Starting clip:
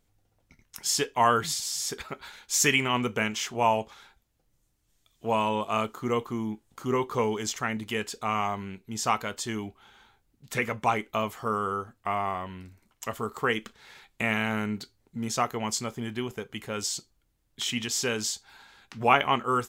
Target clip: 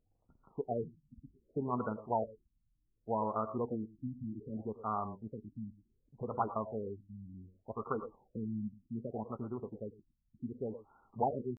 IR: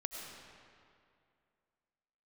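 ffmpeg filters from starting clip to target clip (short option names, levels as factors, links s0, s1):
-filter_complex "[0:a]atempo=1.7[s0];[1:a]atrim=start_sample=2205,afade=t=out:st=0.15:d=0.01,atrim=end_sample=7056,asetrate=38808,aresample=44100[s1];[s0][s1]afir=irnorm=-1:irlink=0,afftfilt=real='re*lt(b*sr/1024,280*pow(1500/280,0.5+0.5*sin(2*PI*0.66*pts/sr)))':imag='im*lt(b*sr/1024,280*pow(1500/280,0.5+0.5*sin(2*PI*0.66*pts/sr)))':win_size=1024:overlap=0.75,volume=0.596"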